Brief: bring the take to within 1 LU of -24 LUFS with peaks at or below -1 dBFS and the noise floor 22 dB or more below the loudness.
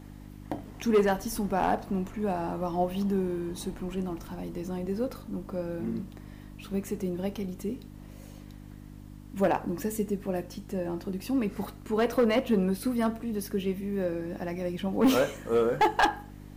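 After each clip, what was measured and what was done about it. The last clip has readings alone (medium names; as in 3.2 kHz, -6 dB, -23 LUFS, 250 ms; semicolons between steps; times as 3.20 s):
clipped samples 0.5%; clipping level -17.0 dBFS; hum 50 Hz; highest harmonic 300 Hz; hum level -44 dBFS; loudness -30.0 LUFS; peak level -17.0 dBFS; loudness target -24.0 LUFS
-> clip repair -17 dBFS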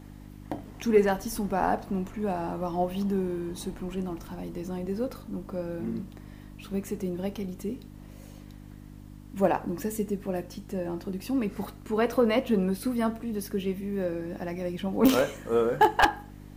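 clipped samples 0.0%; hum 50 Hz; highest harmonic 300 Hz; hum level -44 dBFS
-> de-hum 50 Hz, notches 6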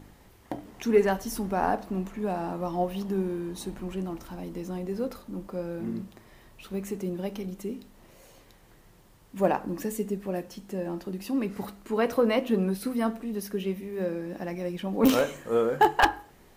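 hum not found; loudness -29.5 LUFS; peak level -7.5 dBFS; loudness target -24.0 LUFS
-> trim +5.5 dB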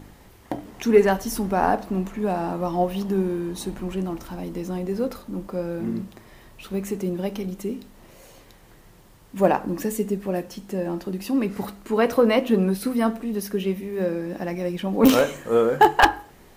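loudness -24.0 LUFS; peak level -2.0 dBFS; noise floor -51 dBFS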